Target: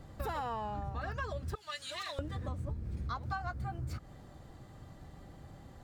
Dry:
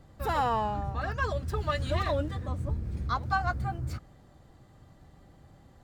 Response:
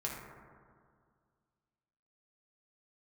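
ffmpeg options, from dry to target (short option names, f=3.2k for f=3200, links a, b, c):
-filter_complex "[0:a]asettb=1/sr,asplit=3[a][b][c];[a]atrim=end=1.554[d];[b]atrim=start=1.55:end=2.19,asetpts=PTS-STARTPTS,afade=t=in:d=0.004:c=qsin,afade=t=out:st=0.636:d=0.004:c=qsin,bandpass=f=7.9k:t=q:w=0.56:csg=0[e];[c]atrim=start=2.186[f];[d][e]acrossfade=d=0.004:c1=hsin:c2=qsin[g];[g][f]acrossfade=d=0.004:c1=qsin:c2=hsin,acompressor=threshold=-39dB:ratio=6,volume=3.5dB"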